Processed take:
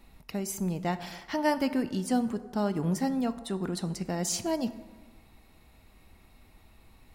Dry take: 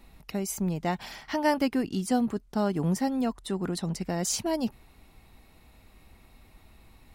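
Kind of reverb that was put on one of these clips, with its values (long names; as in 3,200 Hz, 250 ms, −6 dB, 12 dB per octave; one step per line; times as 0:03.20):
dense smooth reverb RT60 1.4 s, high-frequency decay 0.55×, DRR 11.5 dB
level −2 dB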